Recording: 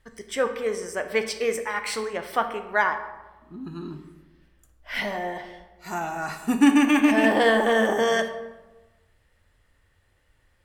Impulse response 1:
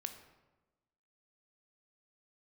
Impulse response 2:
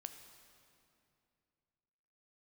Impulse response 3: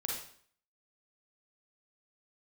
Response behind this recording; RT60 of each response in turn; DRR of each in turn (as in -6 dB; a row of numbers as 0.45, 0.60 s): 1; 1.1, 2.6, 0.55 s; 7.0, 7.0, -2.0 dB